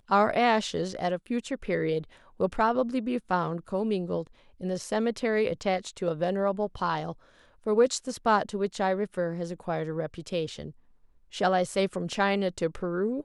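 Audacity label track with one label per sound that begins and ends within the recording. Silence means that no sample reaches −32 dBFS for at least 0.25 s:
2.400000	4.220000	sound
4.630000	7.120000	sound
7.660000	10.680000	sound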